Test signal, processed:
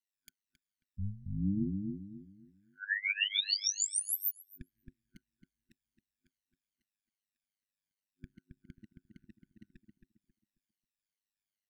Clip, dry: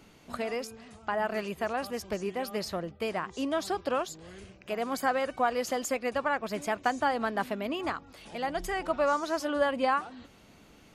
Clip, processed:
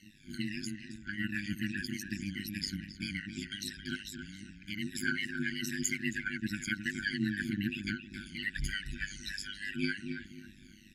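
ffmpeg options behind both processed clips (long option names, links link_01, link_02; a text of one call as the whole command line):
ffmpeg -i in.wav -filter_complex "[0:a]afftfilt=real='re*pow(10,21/40*sin(2*PI*(1.9*log(max(b,1)*sr/1024/100)/log(2)-(-2.5)*(pts-256)/sr)))':imag='im*pow(10,21/40*sin(2*PI*(1.9*log(max(b,1)*sr/1024/100)/log(2)-(-2.5)*(pts-256)/sr)))':win_size=1024:overlap=0.75,afftfilt=real='re*(1-between(b*sr/4096,260,1500))':imag='im*(1-between(b*sr/4096,260,1500))':win_size=4096:overlap=0.75,highshelf=frequency=10000:gain=-5,aecho=1:1:4.7:0.52,tremolo=f=100:d=0.889,asplit=2[link_01][link_02];[link_02]adelay=270,lowpass=frequency=1500:poles=1,volume=-5dB,asplit=2[link_03][link_04];[link_04]adelay=270,lowpass=frequency=1500:poles=1,volume=0.31,asplit=2[link_05][link_06];[link_06]adelay=270,lowpass=frequency=1500:poles=1,volume=0.31,asplit=2[link_07][link_08];[link_08]adelay=270,lowpass=frequency=1500:poles=1,volume=0.31[link_09];[link_03][link_05][link_07][link_09]amix=inputs=4:normalize=0[link_10];[link_01][link_10]amix=inputs=2:normalize=0,volume=-1dB" out.wav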